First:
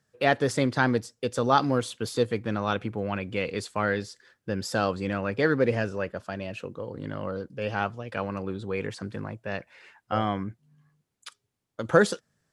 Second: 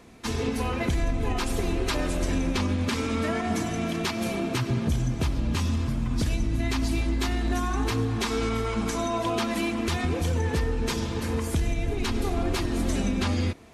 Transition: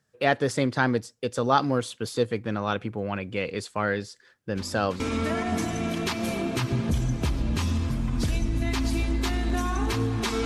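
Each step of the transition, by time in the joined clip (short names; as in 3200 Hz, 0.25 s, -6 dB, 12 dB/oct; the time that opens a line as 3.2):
first
4.55 add second from 2.53 s 0.45 s -16 dB
5 switch to second from 2.98 s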